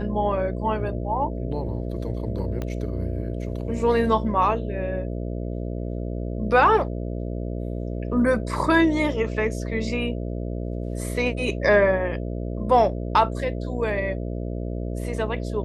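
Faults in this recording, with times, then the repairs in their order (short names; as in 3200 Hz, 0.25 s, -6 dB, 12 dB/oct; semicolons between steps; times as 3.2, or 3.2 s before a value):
buzz 60 Hz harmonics 11 -29 dBFS
2.62 pop -17 dBFS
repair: de-click; de-hum 60 Hz, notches 11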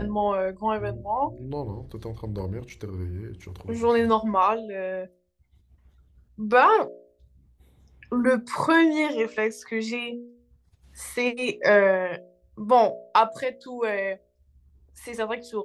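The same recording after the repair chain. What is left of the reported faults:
2.62 pop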